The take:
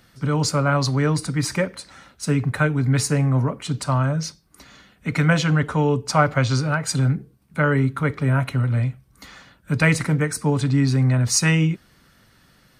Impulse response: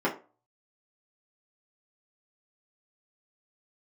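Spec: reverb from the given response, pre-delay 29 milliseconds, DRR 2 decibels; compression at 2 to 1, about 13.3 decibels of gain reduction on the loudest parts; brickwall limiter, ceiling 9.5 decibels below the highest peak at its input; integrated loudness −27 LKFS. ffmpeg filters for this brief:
-filter_complex "[0:a]acompressor=threshold=-37dB:ratio=2,alimiter=limit=-23.5dB:level=0:latency=1,asplit=2[link_01][link_02];[1:a]atrim=start_sample=2205,adelay=29[link_03];[link_02][link_03]afir=irnorm=-1:irlink=0,volume=-14dB[link_04];[link_01][link_04]amix=inputs=2:normalize=0,volume=4dB"

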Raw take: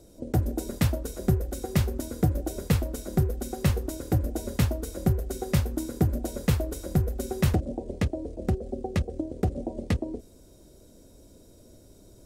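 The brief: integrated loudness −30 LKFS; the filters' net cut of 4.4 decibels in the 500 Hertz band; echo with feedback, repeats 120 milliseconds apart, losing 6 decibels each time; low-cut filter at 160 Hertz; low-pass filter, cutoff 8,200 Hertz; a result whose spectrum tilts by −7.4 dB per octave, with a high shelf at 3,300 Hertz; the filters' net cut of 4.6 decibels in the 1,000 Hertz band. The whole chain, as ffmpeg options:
ffmpeg -i in.wav -af "highpass=160,lowpass=8200,equalizer=frequency=500:width_type=o:gain=-5,equalizer=frequency=1000:width_type=o:gain=-3.5,highshelf=frequency=3300:gain=-8.5,aecho=1:1:120|240|360|480|600|720:0.501|0.251|0.125|0.0626|0.0313|0.0157,volume=3dB" out.wav

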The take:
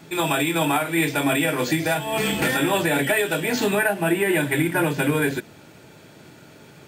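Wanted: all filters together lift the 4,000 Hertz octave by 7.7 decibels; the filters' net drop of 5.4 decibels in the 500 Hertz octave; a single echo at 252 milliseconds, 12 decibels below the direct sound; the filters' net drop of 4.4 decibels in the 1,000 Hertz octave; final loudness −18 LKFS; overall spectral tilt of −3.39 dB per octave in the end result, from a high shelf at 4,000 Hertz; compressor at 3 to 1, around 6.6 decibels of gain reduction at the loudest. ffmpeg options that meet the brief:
ffmpeg -i in.wav -af "equalizer=frequency=500:width_type=o:gain=-6.5,equalizer=frequency=1000:width_type=o:gain=-4.5,highshelf=frequency=4000:gain=3.5,equalizer=frequency=4000:width_type=o:gain=8,acompressor=threshold=-26dB:ratio=3,aecho=1:1:252:0.251,volume=8.5dB" out.wav

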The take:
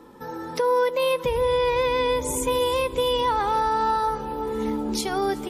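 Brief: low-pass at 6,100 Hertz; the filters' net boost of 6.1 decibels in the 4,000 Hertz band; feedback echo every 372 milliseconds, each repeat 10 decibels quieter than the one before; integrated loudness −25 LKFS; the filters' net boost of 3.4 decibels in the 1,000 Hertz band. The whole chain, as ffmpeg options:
ffmpeg -i in.wav -af "lowpass=6100,equalizer=frequency=1000:width_type=o:gain=3.5,equalizer=frequency=4000:width_type=o:gain=8,aecho=1:1:372|744|1116|1488:0.316|0.101|0.0324|0.0104,volume=-4dB" out.wav

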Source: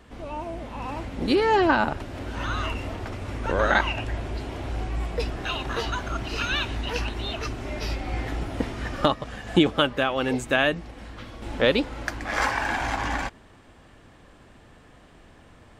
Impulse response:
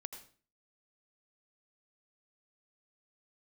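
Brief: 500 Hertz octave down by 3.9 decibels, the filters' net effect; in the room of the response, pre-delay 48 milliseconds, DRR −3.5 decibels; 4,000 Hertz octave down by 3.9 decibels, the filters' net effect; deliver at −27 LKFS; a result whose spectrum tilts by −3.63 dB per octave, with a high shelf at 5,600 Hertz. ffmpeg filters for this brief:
-filter_complex "[0:a]equalizer=frequency=500:width_type=o:gain=-5,equalizer=frequency=4000:width_type=o:gain=-8,highshelf=frequency=5600:gain=7,asplit=2[link_01][link_02];[1:a]atrim=start_sample=2205,adelay=48[link_03];[link_02][link_03]afir=irnorm=-1:irlink=0,volume=6.5dB[link_04];[link_01][link_04]amix=inputs=2:normalize=0,volume=-3.5dB"

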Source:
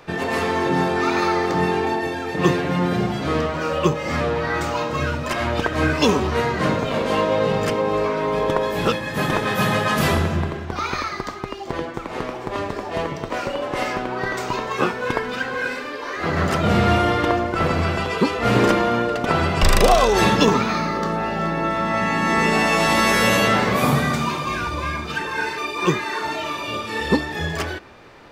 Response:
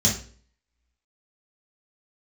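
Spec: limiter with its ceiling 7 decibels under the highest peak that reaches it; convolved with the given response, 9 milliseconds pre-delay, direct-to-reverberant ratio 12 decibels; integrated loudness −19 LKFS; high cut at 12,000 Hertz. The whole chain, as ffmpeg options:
-filter_complex "[0:a]lowpass=12000,alimiter=limit=-10dB:level=0:latency=1,asplit=2[link_01][link_02];[1:a]atrim=start_sample=2205,adelay=9[link_03];[link_02][link_03]afir=irnorm=-1:irlink=0,volume=-24dB[link_04];[link_01][link_04]amix=inputs=2:normalize=0,volume=2.5dB"

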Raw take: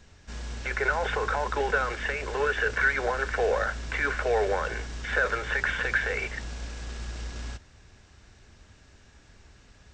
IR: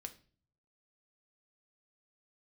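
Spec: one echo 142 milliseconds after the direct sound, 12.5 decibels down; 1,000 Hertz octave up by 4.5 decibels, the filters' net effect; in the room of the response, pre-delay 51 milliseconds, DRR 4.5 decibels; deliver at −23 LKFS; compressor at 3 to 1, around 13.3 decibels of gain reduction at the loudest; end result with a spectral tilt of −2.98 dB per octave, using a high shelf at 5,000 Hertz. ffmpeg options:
-filter_complex "[0:a]equalizer=frequency=1000:width_type=o:gain=6.5,highshelf=frequency=5000:gain=-6.5,acompressor=threshold=-37dB:ratio=3,aecho=1:1:142:0.237,asplit=2[link_01][link_02];[1:a]atrim=start_sample=2205,adelay=51[link_03];[link_02][link_03]afir=irnorm=-1:irlink=0,volume=0dB[link_04];[link_01][link_04]amix=inputs=2:normalize=0,volume=13dB"

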